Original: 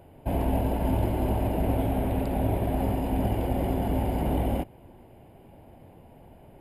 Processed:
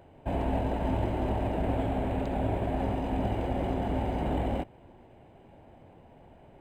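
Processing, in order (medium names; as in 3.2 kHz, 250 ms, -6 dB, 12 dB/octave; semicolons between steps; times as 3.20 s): bass shelf 440 Hz -4.5 dB; decimation joined by straight lines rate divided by 4×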